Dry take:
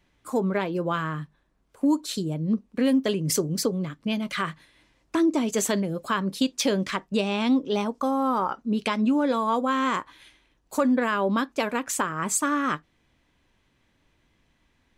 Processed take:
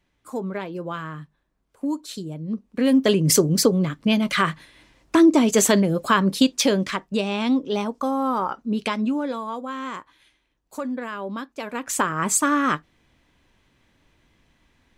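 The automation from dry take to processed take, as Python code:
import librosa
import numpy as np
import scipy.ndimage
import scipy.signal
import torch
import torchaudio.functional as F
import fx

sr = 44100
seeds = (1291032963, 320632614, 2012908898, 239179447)

y = fx.gain(x, sr, db=fx.line((2.5, -4.0), (3.12, 7.5), (6.32, 7.5), (7.04, 1.0), (8.91, 1.0), (9.55, -7.0), (11.59, -7.0), (12.02, 4.5)))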